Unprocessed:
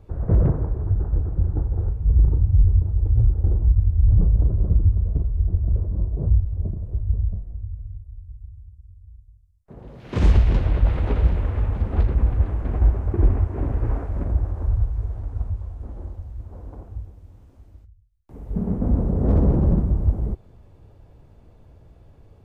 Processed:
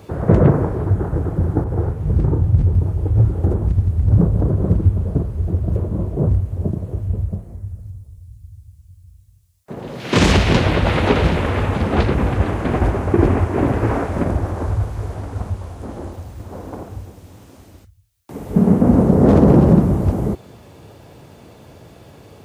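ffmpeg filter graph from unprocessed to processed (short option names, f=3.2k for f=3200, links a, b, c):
-filter_complex "[0:a]asettb=1/sr,asplit=3[a][b][c];[a]atrim=end=1.644[d];[b]atrim=start=1.64:end=2.75,asetpts=PTS-STARTPTS,afade=t=in:d=0.004:c=qsin,afade=t=out:st=1.106:d=0.004:c=qsin,asplit=2[e][f];[f]adelay=26,volume=-11dB[g];[e][g]amix=inputs=2:normalize=0,atrim=end_sample=48951,adynamicequalizer=threshold=0.00398:dfrequency=1900:dqfactor=0.7:tfrequency=1900:tqfactor=0.7:attack=5:release=100:ratio=0.375:range=2:mode=cutabove:tftype=highshelf[h];[c]atrim=start=2.746[i];[d][h]acrossfade=d=0.004:c1=hsin:c2=qsin[j];[j][i]acrossfade=d=0.004:c1=qsin:c2=hsin,highpass=150,highshelf=f=2.2k:g=10,alimiter=level_in=14.5dB:limit=-1dB:release=50:level=0:latency=1,volume=-1dB"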